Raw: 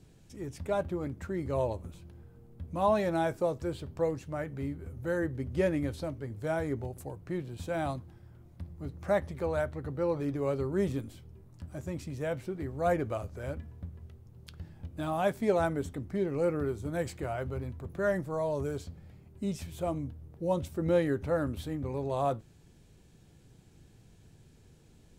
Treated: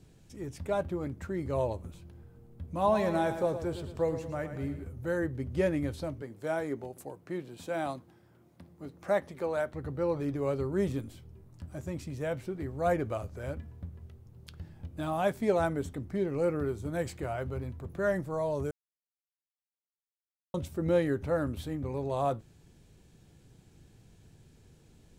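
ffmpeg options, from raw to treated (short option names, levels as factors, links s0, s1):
-filter_complex "[0:a]asettb=1/sr,asplit=3[s0][s1][s2];[s0]atrim=end=2.734[s3];[s1]atrim=start=2.73:end=4.84,asetpts=PTS-STARTPTS,afade=t=in:d=0.004:c=qsin,afade=t=out:st=2.106:d=0.004:c=qsin,aecho=1:1:112|224|336|448|560:0.316|0.152|0.0729|0.035|0.0168,atrim=end_sample=93051[s4];[s2]atrim=start=4.836[s5];[s3][s4]acrossfade=d=0.004:c1=hsin:c2=qsin[s6];[s6][s5]acrossfade=d=0.004:c1=qsin:c2=hsin,asettb=1/sr,asplit=3[s7][s8][s9];[s7]atrim=end=6.224[s10];[s8]atrim=start=6.22:end=9.74,asetpts=PTS-STARTPTS,afade=t=in:d=0.004:c=qsin,afade=t=out:st=3.516:d=0.004:c=qsin,highpass=210[s11];[s9]atrim=start=9.736[s12];[s10][s11]acrossfade=d=0.004:c1=hsin:c2=qsin[s13];[s13][s12]acrossfade=d=0.004:c1=qsin:c2=hsin,asplit=3[s14][s15][s16];[s14]atrim=end=18.71,asetpts=PTS-STARTPTS,afade=t=out:st=18.706:d=0.004:c=hsin[s17];[s15]atrim=start=18.71:end=20.54,asetpts=PTS-STARTPTS,volume=0[s18];[s16]atrim=start=20.54,asetpts=PTS-STARTPTS,afade=t=in:d=0.004:c=hsin[s19];[s17][s18][s19]concat=n=3:v=0:a=1"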